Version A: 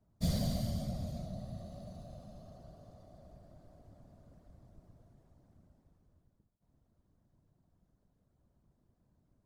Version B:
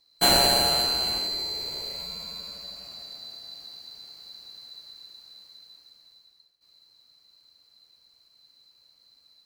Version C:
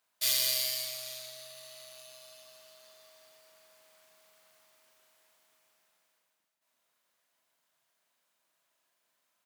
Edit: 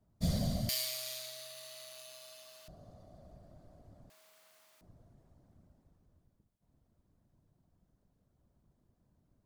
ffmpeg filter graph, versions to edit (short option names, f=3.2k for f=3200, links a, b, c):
-filter_complex "[2:a]asplit=2[a][b];[0:a]asplit=3[c][d][e];[c]atrim=end=0.692[f];[a]atrim=start=0.688:end=2.682[g];[d]atrim=start=2.678:end=4.102[h];[b]atrim=start=4.098:end=4.812[i];[e]atrim=start=4.808[j];[f][g]acrossfade=d=0.004:c1=hsin:c2=hsin[k];[k][h]acrossfade=d=0.004:c1=hsin:c2=hsin[l];[l][i]acrossfade=d=0.004:c1=hsin:c2=hsin[m];[m][j]acrossfade=d=0.004:c1=hsin:c2=hsin"